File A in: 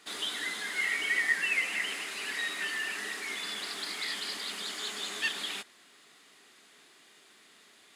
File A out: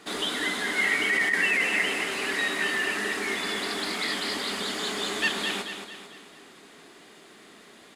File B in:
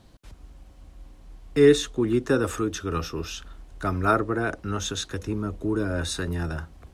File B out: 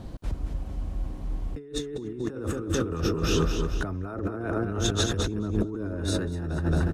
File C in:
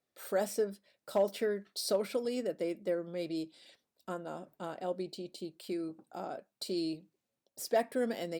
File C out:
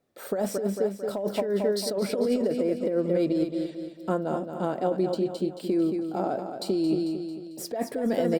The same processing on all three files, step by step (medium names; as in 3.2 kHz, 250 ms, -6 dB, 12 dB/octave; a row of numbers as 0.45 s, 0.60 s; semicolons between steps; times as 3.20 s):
tilt shelf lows +6 dB, about 1.1 kHz; on a send: feedback delay 223 ms, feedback 47%, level -8 dB; on the sum: compressor with a negative ratio -31 dBFS, ratio -1; peak normalisation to -12 dBFS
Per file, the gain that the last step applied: +8.5 dB, +1.5 dB, +6.5 dB